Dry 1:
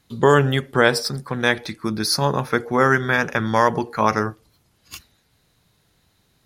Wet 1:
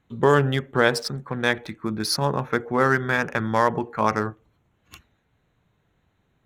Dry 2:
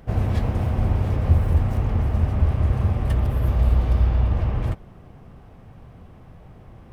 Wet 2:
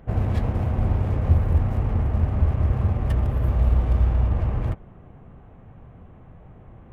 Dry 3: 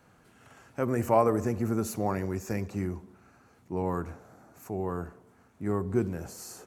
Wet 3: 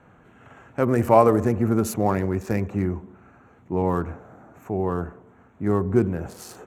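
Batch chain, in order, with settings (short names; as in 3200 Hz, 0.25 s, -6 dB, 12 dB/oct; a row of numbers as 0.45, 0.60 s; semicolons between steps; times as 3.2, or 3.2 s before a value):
Wiener smoothing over 9 samples; match loudness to -23 LUFS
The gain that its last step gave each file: -3.0, -1.0, +7.5 dB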